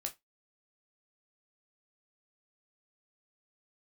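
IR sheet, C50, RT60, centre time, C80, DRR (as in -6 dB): 18.0 dB, not exponential, 8 ms, 28.0 dB, 3.0 dB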